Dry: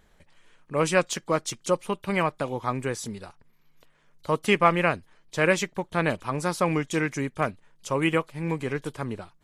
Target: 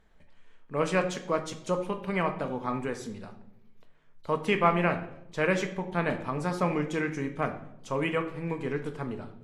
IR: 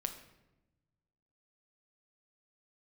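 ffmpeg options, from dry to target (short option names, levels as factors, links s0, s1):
-filter_complex "[0:a]lowpass=f=3100:p=1[s0];[1:a]atrim=start_sample=2205,asetrate=61740,aresample=44100[s1];[s0][s1]afir=irnorm=-1:irlink=0"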